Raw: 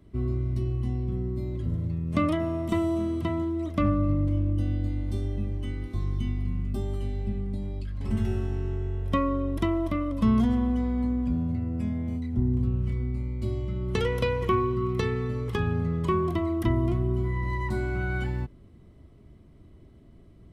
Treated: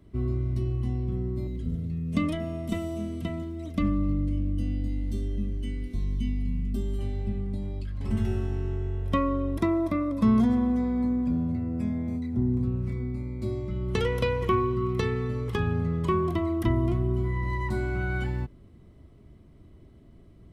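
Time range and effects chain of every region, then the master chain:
1.47–6.99 s: peaking EQ 1 kHz -11 dB 1.6 oct + comb 4.4 ms, depth 58%
9.58–13.71 s: high-pass 230 Hz 6 dB/octave + bass shelf 420 Hz +6 dB + band-stop 3 kHz, Q 5.7
whole clip: none

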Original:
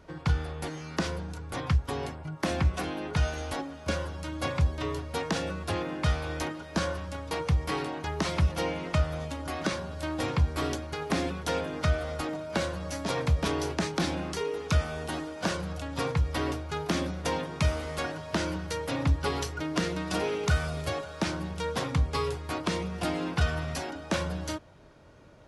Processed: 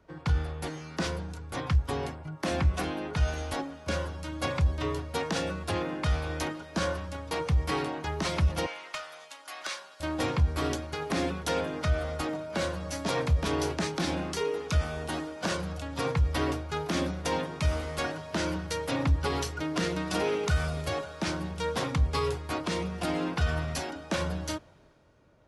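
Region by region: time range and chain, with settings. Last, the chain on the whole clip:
8.66–10.00 s: high-pass 1 kHz + valve stage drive 23 dB, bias 0.25
whole clip: peak limiter -20.5 dBFS; three bands expanded up and down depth 40%; trim +1.5 dB

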